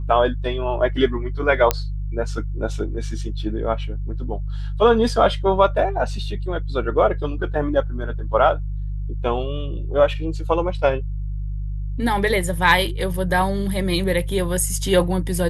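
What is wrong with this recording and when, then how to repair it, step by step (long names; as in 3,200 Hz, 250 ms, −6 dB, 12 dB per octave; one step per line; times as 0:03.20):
mains hum 50 Hz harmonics 3 −26 dBFS
0:01.71: click −2 dBFS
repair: click removal
hum removal 50 Hz, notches 3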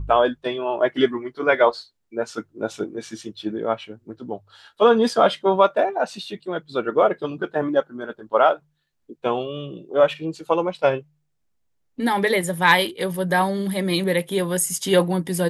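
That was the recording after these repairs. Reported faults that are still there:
none of them is left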